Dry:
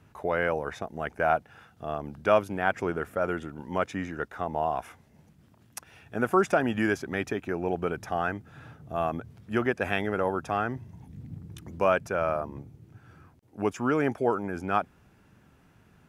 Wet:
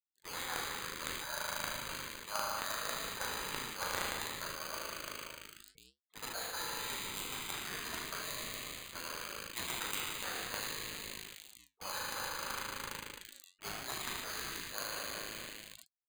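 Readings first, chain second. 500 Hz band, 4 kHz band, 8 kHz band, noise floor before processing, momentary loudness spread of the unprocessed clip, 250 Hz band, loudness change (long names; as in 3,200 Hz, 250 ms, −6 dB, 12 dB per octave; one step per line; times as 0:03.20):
−20.0 dB, +7.5 dB, +10.0 dB, −60 dBFS, 17 LU, −20.5 dB, −10.5 dB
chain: harmonic and percussive parts rebalanced harmonic −7 dB
single-sideband voice off tune +87 Hz 570–2,800 Hz
high-shelf EQ 2,200 Hz −8.5 dB
spring reverb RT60 3.2 s, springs 37 ms, chirp 65 ms, DRR −4 dB
dynamic equaliser 1,100 Hz, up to −3 dB, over −34 dBFS, Q 0.75
bad sample-rate conversion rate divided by 8×, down none, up hold
dead-zone distortion −38.5 dBFS
reversed playback
downward compressor 10 to 1, threshold −37 dBFS, peak gain reduction 15 dB
reversed playback
gate on every frequency bin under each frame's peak −10 dB weak
flanger 0.63 Hz, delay 3.1 ms, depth 8.1 ms, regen −74%
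in parallel at −9 dB: log-companded quantiser 2 bits
on the sum: level that may fall only so fast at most 28 dB per second
level +10.5 dB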